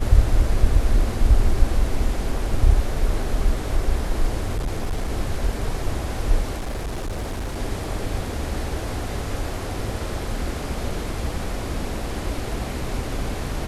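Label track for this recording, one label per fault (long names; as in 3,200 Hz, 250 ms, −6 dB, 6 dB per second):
4.550000	5.080000	clipping −20 dBFS
6.570000	7.580000	clipping −24 dBFS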